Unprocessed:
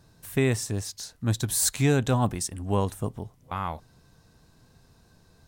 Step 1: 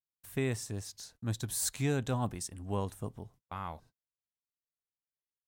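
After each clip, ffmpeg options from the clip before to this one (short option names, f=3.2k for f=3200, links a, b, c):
-af "agate=range=-47dB:threshold=-48dB:ratio=16:detection=peak,volume=-9dB"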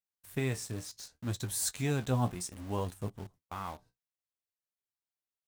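-filter_complex "[0:a]flanger=delay=10:depth=6.7:regen=50:speed=0.64:shape=sinusoidal,asplit=2[a][b];[b]acrusher=bits=7:mix=0:aa=0.000001,volume=-3.5dB[c];[a][c]amix=inputs=2:normalize=0"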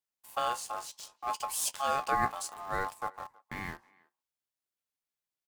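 -filter_complex "[0:a]aeval=exprs='val(0)*sin(2*PI*960*n/s)':c=same,asplit=2[a][b];[b]adelay=320,highpass=300,lowpass=3.4k,asoftclip=type=hard:threshold=-26dB,volume=-25dB[c];[a][c]amix=inputs=2:normalize=0,volume=3.5dB"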